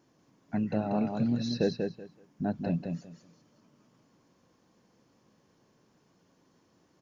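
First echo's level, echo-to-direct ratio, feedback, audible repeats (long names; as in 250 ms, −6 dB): −5.0 dB, −5.0 dB, 20%, 3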